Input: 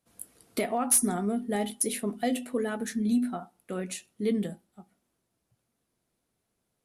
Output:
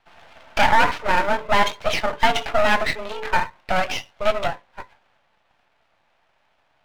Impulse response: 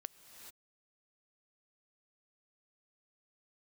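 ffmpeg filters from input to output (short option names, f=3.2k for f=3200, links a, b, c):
-af "apsyclip=29dB,highpass=f=440:t=q:w=0.5412,highpass=f=440:t=q:w=1.307,lowpass=f=3k:t=q:w=0.5176,lowpass=f=3k:t=q:w=0.7071,lowpass=f=3k:t=q:w=1.932,afreqshift=190,aeval=exprs='max(val(0),0)':c=same,volume=-4.5dB"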